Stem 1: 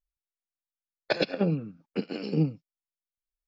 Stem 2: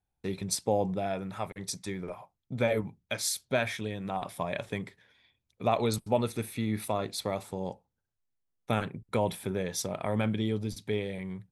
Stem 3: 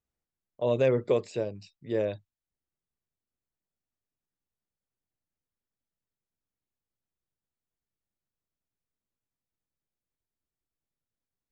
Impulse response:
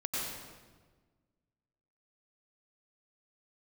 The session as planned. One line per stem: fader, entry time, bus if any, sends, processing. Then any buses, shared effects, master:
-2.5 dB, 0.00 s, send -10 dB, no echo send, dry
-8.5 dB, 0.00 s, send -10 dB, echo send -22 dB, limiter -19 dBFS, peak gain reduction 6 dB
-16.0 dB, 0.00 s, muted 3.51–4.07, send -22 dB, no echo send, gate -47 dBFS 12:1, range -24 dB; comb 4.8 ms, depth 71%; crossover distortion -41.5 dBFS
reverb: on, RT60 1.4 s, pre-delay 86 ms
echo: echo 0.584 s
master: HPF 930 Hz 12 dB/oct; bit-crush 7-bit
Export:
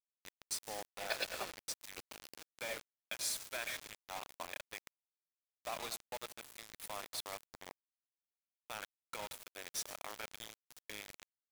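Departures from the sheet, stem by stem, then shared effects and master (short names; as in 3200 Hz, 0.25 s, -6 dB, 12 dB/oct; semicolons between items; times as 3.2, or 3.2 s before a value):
stem 1 -2.5 dB -> -9.5 dB; stem 3: muted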